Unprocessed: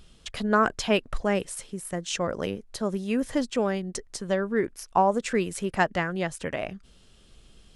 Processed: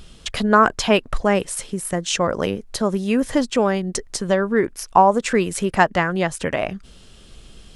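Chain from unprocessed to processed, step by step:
dynamic equaliser 1,000 Hz, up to +4 dB, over −38 dBFS, Q 1.7
in parallel at −1 dB: downward compressor, threshold −32 dBFS, peak gain reduction 17.5 dB
on the sum: level +4.5 dB

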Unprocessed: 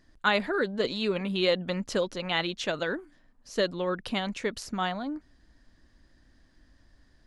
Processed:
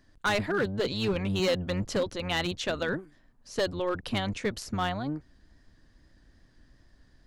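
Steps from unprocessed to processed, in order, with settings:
sub-octave generator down 1 octave, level −2 dB
gain into a clipping stage and back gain 21.5 dB
tape wow and flutter 28 cents

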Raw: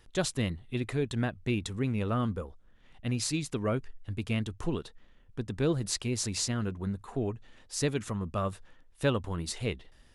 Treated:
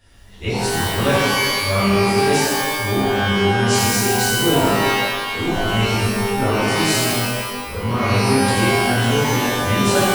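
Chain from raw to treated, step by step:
played backwards from end to start
reverb with rising layers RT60 1.4 s, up +12 semitones, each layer −2 dB, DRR −11.5 dB

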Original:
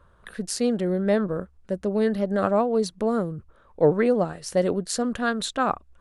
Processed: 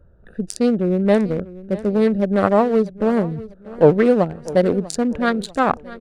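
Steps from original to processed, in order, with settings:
adaptive Wiener filter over 41 samples
on a send: repeating echo 644 ms, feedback 40%, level −18 dB
on the sum: level +7 dB

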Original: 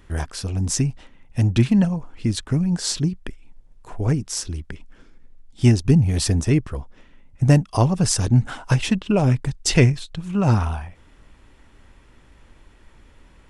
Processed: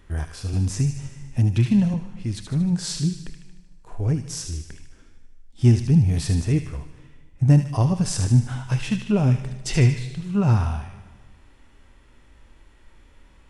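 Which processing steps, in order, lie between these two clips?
harmonic and percussive parts rebalanced percussive −10 dB
on a send: delay with a high-pass on its return 76 ms, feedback 55%, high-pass 1,600 Hz, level −6.5 dB
on the sum: dense smooth reverb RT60 1.5 s, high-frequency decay 0.9×, DRR 14 dB
0:00.53–0:01.94: multiband upward and downward compressor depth 40%

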